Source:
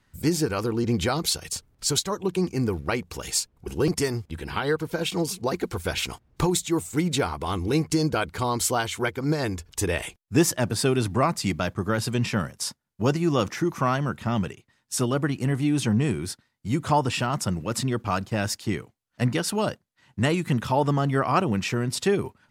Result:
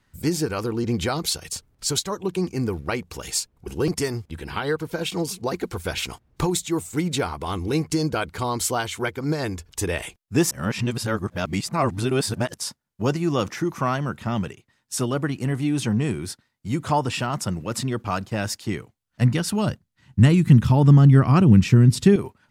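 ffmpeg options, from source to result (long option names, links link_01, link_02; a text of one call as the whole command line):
ffmpeg -i in.wav -filter_complex "[0:a]asettb=1/sr,asplit=3[link_01][link_02][link_03];[link_01]atrim=end=18.744[link_04];[link_02]atrim=start=18.74:end=22.16,asetpts=PTS-STARTPTS,afade=type=in:duration=0.004:curve=qsin,afade=type=out:start_time=3.416:duration=0.004:curve=qsin,asubboost=boost=10:cutoff=230[link_05];[link_03]atrim=start=22.156[link_06];[link_04][link_05]acrossfade=duration=0.004:curve1=hsin:curve2=qsin[link_07];[link_07][link_06]acrossfade=duration=0.004:curve1=qsin:curve2=hsin,asplit=3[link_08][link_09][link_10];[link_08]atrim=end=10.512[link_11];[link_09]atrim=start=10.508:end=12.542,asetpts=PTS-STARTPTS,areverse[link_12];[link_10]atrim=start=12.538[link_13];[link_11][link_12]acrossfade=duration=0.004:curve1=hsin:curve2=hsin[link_14];[link_14][link_13]acrossfade=duration=0.004:curve1=hsin:curve2=hsin" out.wav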